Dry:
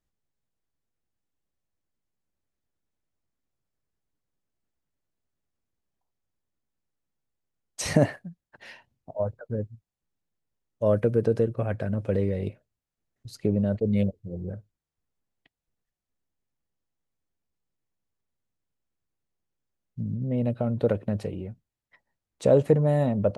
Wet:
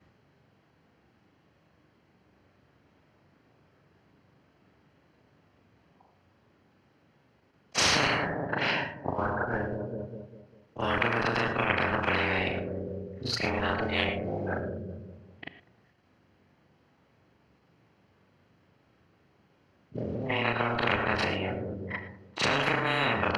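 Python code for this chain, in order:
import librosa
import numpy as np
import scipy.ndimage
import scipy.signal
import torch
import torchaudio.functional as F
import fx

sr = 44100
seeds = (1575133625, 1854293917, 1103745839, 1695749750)

p1 = fx.frame_reverse(x, sr, frame_ms=85.0)
p2 = scipy.signal.sosfilt(scipy.signal.butter(4, 79.0, 'highpass', fs=sr, output='sos'), p1)
p3 = fx.low_shelf(p2, sr, hz=150.0, db=-2.0)
p4 = fx.notch(p3, sr, hz=3600.0, q=8.3)
p5 = fx.level_steps(p4, sr, step_db=16)
p6 = p4 + (p5 * librosa.db_to_amplitude(-3.0))
p7 = fx.air_absorb(p6, sr, metres=290.0)
p8 = p7 + fx.echo_bbd(p7, sr, ms=199, stages=2048, feedback_pct=40, wet_db=-22.0, dry=0)
p9 = fx.rev_gated(p8, sr, seeds[0], gate_ms=130, shape='rising', drr_db=11.5)
y = fx.spectral_comp(p9, sr, ratio=10.0)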